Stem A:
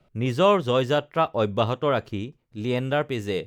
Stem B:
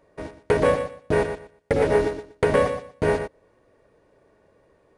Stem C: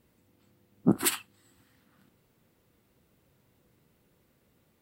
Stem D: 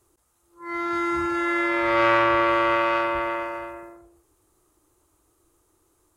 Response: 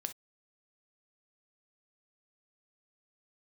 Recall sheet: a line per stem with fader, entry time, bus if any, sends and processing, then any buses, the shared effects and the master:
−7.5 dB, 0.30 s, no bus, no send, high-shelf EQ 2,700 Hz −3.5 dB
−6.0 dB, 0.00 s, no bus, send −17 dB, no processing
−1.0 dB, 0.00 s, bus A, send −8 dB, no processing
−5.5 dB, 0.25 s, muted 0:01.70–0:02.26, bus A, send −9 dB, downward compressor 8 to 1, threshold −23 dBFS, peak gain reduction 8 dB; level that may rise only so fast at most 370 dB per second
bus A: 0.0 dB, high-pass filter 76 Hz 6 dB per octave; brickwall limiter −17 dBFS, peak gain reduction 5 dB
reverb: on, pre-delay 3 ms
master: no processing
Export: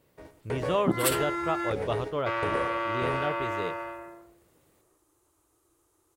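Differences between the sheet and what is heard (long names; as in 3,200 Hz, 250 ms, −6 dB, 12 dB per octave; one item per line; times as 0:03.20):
stem B −6.0 dB → −14.0 dB
master: extra parametric band 220 Hz −11 dB 0.23 octaves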